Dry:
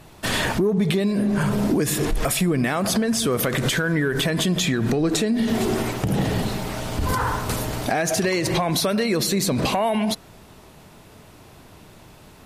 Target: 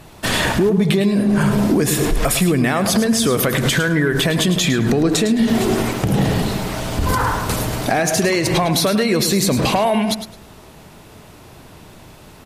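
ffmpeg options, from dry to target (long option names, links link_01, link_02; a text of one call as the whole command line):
ffmpeg -i in.wav -af "aecho=1:1:106|212|318:0.299|0.0597|0.0119,volume=4.5dB" out.wav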